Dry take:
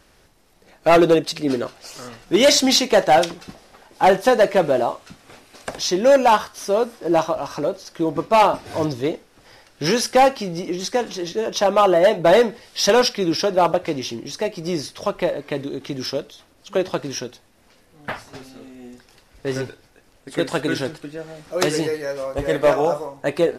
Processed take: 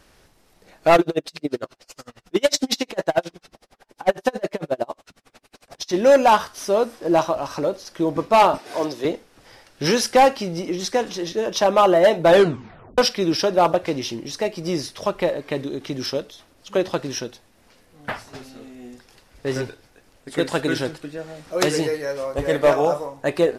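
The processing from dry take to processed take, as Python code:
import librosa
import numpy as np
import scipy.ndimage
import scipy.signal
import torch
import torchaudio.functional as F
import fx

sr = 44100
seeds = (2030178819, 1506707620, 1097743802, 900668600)

y = fx.tremolo_db(x, sr, hz=11.0, depth_db=36, at=(0.96, 5.92), fade=0.02)
y = fx.highpass(y, sr, hz=320.0, slope=12, at=(8.58, 9.05))
y = fx.edit(y, sr, fx.tape_stop(start_s=12.29, length_s=0.69), tone=tone)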